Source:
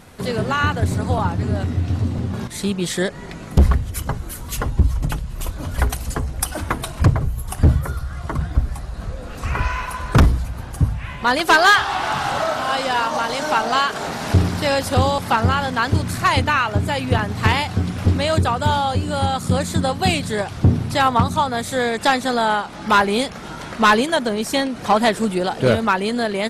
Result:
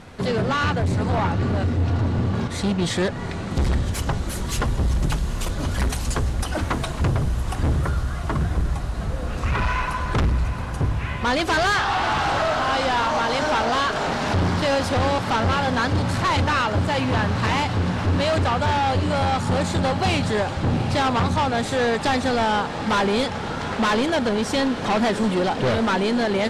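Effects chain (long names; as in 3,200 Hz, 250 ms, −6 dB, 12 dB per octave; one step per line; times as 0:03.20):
0:03.55–0:06.33: high-shelf EQ 3,900 Hz +10 dB
hard clipping −20.5 dBFS, distortion −5 dB
high-frequency loss of the air 73 metres
feedback delay with all-pass diffusion 790 ms, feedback 78%, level −13 dB
level +2.5 dB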